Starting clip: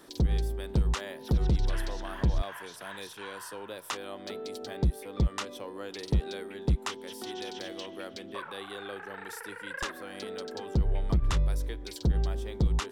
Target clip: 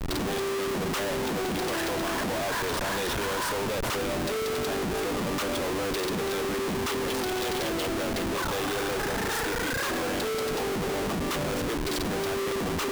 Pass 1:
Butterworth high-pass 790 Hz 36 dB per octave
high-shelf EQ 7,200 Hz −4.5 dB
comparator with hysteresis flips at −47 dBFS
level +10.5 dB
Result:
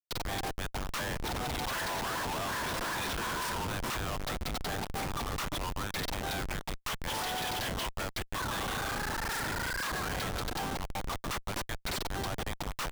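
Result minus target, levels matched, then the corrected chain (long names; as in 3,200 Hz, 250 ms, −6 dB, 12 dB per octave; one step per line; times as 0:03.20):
250 Hz band −4.5 dB
Butterworth high-pass 210 Hz 36 dB per octave
high-shelf EQ 7,200 Hz −4.5 dB
comparator with hysteresis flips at −47 dBFS
level +10.5 dB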